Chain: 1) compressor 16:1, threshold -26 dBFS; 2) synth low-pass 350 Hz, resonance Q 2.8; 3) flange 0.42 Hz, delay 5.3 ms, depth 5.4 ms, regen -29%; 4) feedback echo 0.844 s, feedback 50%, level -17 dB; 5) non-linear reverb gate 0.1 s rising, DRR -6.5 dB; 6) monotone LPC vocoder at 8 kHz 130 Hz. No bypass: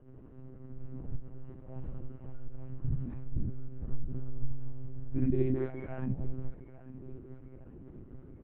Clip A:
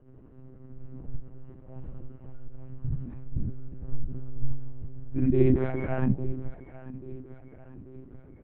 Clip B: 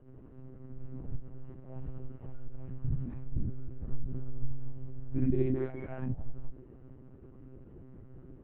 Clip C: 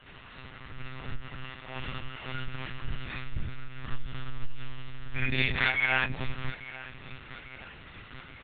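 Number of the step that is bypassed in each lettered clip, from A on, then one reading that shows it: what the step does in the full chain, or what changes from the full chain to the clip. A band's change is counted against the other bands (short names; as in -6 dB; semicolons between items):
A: 1, crest factor change +2.5 dB; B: 4, momentary loudness spread change +2 LU; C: 2, 2 kHz band +31.0 dB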